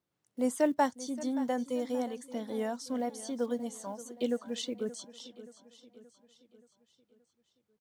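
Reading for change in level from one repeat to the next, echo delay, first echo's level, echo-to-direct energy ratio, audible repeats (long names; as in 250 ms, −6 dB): −6.0 dB, 576 ms, −16.0 dB, −14.5 dB, 4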